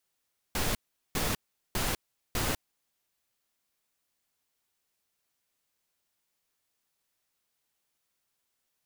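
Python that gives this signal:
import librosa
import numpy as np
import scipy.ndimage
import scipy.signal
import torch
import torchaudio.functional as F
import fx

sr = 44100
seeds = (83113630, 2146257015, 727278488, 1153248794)

y = fx.noise_burst(sr, seeds[0], colour='pink', on_s=0.2, off_s=0.4, bursts=4, level_db=-29.5)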